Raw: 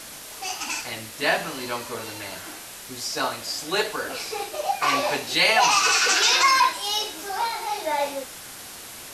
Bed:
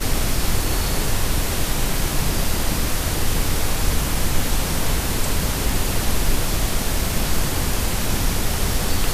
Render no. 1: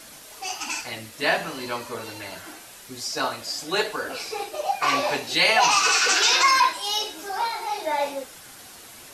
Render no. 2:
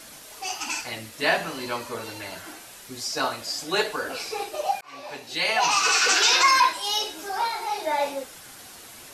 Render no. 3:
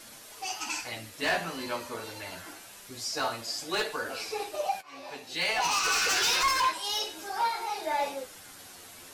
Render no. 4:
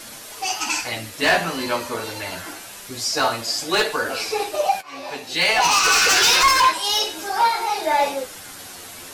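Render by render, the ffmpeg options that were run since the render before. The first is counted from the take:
-af "afftdn=nr=6:nf=-40"
-filter_complex "[0:a]asplit=2[a][b];[a]atrim=end=4.81,asetpts=PTS-STARTPTS,afade=t=out:st=4.806:d=0.004:c=hsin[c];[b]atrim=start=4.81,asetpts=PTS-STARTPTS,afade=t=in:d=1.23[d];[c][d]concat=n=2:v=0:a=1"
-af "asoftclip=type=hard:threshold=-19dB,flanger=delay=8.6:depth=3:regen=44:speed=0.27:shape=sinusoidal"
-af "volume=10.5dB"

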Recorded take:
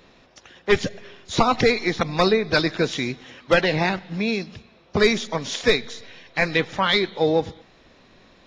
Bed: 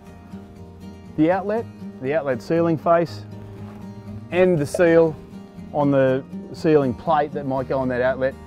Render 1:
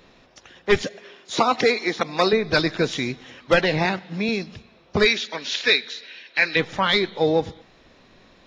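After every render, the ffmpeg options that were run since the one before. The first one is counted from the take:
-filter_complex "[0:a]asettb=1/sr,asplit=3[a][b][c];[a]atrim=end=0.824[d];[b]atrim=start=0.82:end=2.33,asetpts=PTS-STARTPTS,afade=t=in:d=0.004:c=qsin,afade=t=out:st=1.506:d=0.004:c=qsin,highpass=260[e];[c]atrim=start=2.326[f];[d][e]acrossfade=d=0.004:c1=hsin:c2=qsin[g];[g][f]acrossfade=d=0.004:c1=qsin:c2=hsin,asettb=1/sr,asplit=3[h][i][j];[h]atrim=end=3.854[k];[i]atrim=start=3.85:end=4.29,asetpts=PTS-STARTPTS,afade=t=in:d=0.004:c=qsin,afade=t=out:st=0.436:d=0.004:c=qsin,highpass=130[l];[j]atrim=start=4.286[m];[k][l]acrossfade=d=0.004:c1=hsin:c2=qsin[n];[n][m]acrossfade=d=0.004:c1=qsin:c2=hsin,asplit=3[o][p][q];[o]afade=t=out:st=5.04:d=0.02[r];[p]highpass=380,equalizer=f=490:t=q:w=4:g=-5,equalizer=f=720:t=q:w=4:g=-8,equalizer=f=1.1k:t=q:w=4:g=-7,equalizer=f=1.6k:t=q:w=4:g=5,equalizer=f=2.6k:t=q:w=4:g=7,equalizer=f=4.1k:t=q:w=4:g=6,lowpass=f=6.2k:w=0.5412,lowpass=f=6.2k:w=1.3066,afade=t=in:st=5.04:d=0.02,afade=t=out:st=6.55:d=0.02[s];[q]afade=t=in:st=6.55:d=0.02[t];[r][s][t]amix=inputs=3:normalize=0"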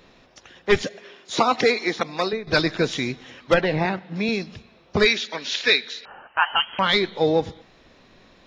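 -filter_complex "[0:a]asettb=1/sr,asplit=3[a][b][c];[a]atrim=end=3.544[d];[b]atrim=start=3.54:end=4.16,asetpts=PTS-STARTPTS,afade=t=in:d=0.004:c=qsin,afade=t=out:st=0.616:d=0.004:c=qsin,lowpass=f=1.8k:p=1[e];[c]atrim=start=4.156[f];[d][e]acrossfade=d=0.004:c1=hsin:c2=qsin[g];[g][f]acrossfade=d=0.004:c1=qsin:c2=hsin,asettb=1/sr,asplit=3[h][i][j];[h]atrim=end=6.054[k];[i]atrim=start=6.05:end=6.79,asetpts=PTS-STARTPTS,afade=t=in:d=0.004:c=qsin,afade=t=out:st=0.736:d=0.004:c=qsin,lowpass=f=2.8k:t=q:w=0.5098,lowpass=f=2.8k:t=q:w=0.6013,lowpass=f=2.8k:t=q:w=0.9,lowpass=f=2.8k:t=q:w=2.563,afreqshift=-3300[l];[j]atrim=start=6.786[m];[k][l]acrossfade=d=0.004:c1=hsin:c2=qsin[n];[n][m]acrossfade=d=0.004:c1=qsin:c2=hsin,asplit=2[o][p];[o]atrim=end=2.47,asetpts=PTS-STARTPTS,afade=t=out:st=1.94:d=0.53:silence=0.237137[q];[p]atrim=start=2.47,asetpts=PTS-STARTPTS,afade=t=in:d=0.004:c=hsin:silence=0.237137[r];[q][r]concat=n=2:v=0:a=1"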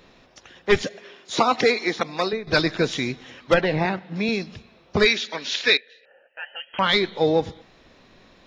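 -filter_complex "[0:a]asettb=1/sr,asplit=3[a][b][c];[a]atrim=end=5.774[d];[b]atrim=start=5.77:end=6.74,asetpts=PTS-STARTPTS,afade=t=in:d=0.004:c=qsin,afade=t=out:st=0.966:d=0.004:c=qsin,asplit=3[e][f][g];[e]bandpass=f=530:t=q:w=8,volume=0dB[h];[f]bandpass=f=1.84k:t=q:w=8,volume=-6dB[i];[g]bandpass=f=2.48k:t=q:w=8,volume=-9dB[j];[h][i][j]amix=inputs=3:normalize=0[k];[c]atrim=start=6.736[l];[d][k]acrossfade=d=0.004:c1=hsin:c2=qsin[m];[m][l]acrossfade=d=0.004:c1=qsin:c2=hsin"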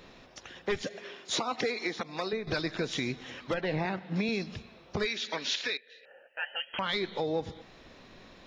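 -af "acompressor=threshold=-23dB:ratio=4,alimiter=limit=-20dB:level=0:latency=1:release=368"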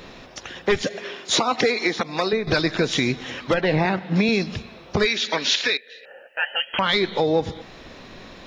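-af "volume=11dB"

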